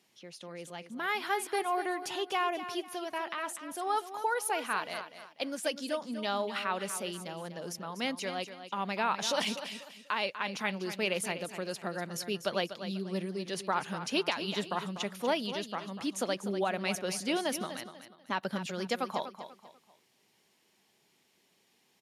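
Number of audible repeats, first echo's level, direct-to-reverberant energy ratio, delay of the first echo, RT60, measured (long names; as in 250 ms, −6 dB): 3, −11.0 dB, no reverb audible, 245 ms, no reverb audible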